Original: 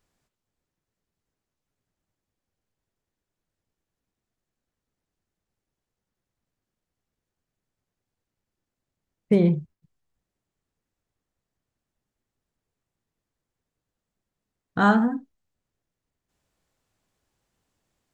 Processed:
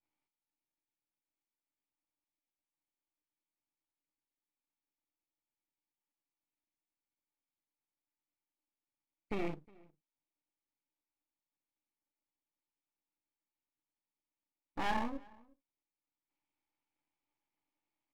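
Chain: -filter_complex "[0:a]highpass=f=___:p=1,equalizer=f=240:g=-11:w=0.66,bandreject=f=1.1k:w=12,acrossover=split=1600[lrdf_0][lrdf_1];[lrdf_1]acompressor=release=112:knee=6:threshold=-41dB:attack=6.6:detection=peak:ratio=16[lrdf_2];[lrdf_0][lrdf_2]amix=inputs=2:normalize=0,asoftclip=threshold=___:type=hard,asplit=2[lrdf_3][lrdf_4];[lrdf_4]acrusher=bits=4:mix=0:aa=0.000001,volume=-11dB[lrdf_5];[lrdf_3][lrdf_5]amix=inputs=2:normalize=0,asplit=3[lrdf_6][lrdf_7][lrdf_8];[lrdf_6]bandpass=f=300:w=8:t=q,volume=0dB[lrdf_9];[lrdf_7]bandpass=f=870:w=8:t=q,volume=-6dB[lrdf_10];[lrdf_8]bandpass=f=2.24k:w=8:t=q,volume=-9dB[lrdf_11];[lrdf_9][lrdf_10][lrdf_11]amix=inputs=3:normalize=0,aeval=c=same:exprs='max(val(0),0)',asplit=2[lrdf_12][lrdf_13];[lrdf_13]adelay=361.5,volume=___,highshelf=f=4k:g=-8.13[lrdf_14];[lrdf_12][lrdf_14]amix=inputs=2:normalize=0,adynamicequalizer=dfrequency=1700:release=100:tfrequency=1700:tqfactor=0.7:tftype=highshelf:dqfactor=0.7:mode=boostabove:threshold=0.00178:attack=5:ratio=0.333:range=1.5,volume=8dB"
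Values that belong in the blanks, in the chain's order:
60, -23.5dB, -25dB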